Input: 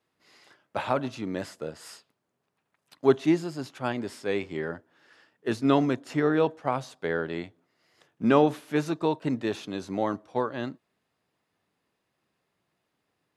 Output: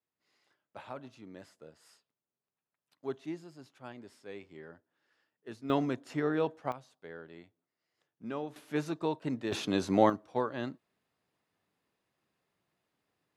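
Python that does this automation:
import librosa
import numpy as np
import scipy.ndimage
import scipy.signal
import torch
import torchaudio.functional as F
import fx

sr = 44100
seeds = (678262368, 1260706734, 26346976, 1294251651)

y = fx.gain(x, sr, db=fx.steps((0.0, -17.0), (5.7, -7.0), (6.72, -18.0), (8.56, -6.5), (9.52, 4.0), (10.1, -4.0)))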